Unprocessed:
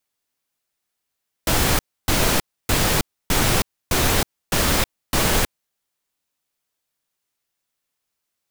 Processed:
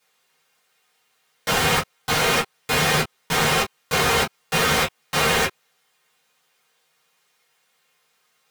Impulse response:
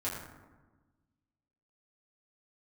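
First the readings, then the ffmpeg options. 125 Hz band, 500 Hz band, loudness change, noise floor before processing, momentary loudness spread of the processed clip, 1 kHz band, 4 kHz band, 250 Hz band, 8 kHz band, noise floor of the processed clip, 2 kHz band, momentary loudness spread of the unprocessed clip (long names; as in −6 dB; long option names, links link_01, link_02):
−3.5 dB, +1.5 dB, 0.0 dB, −80 dBFS, 5 LU, +3.0 dB, +1.0 dB, −3.5 dB, −3.0 dB, −68 dBFS, +4.0 dB, 5 LU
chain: -filter_complex "[0:a]asplit=2[link_01][link_02];[link_02]alimiter=limit=-14.5dB:level=0:latency=1:release=149,volume=0.5dB[link_03];[link_01][link_03]amix=inputs=2:normalize=0,asplit=2[link_04][link_05];[link_05]highpass=frequency=720:poles=1,volume=27dB,asoftclip=type=tanh:threshold=-3.5dB[link_06];[link_04][link_06]amix=inputs=2:normalize=0,lowpass=frequency=4200:poles=1,volume=-6dB[link_07];[1:a]atrim=start_sample=2205,atrim=end_sample=3528,asetrate=74970,aresample=44100[link_08];[link_07][link_08]afir=irnorm=-1:irlink=0,volume=-6dB"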